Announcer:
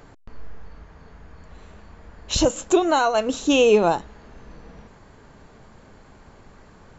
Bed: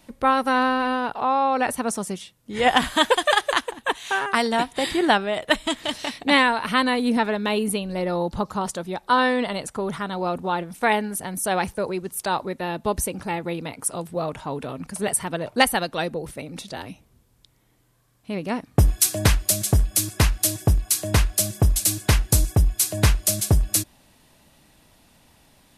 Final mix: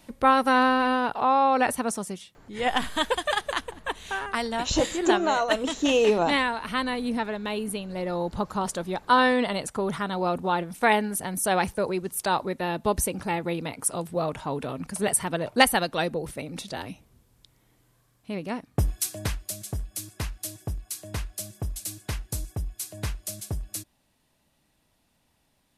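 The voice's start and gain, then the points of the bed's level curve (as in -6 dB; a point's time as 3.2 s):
2.35 s, -5.0 dB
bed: 1.62 s 0 dB
2.33 s -7 dB
7.66 s -7 dB
8.82 s -0.5 dB
17.97 s -0.5 dB
19.5 s -13.5 dB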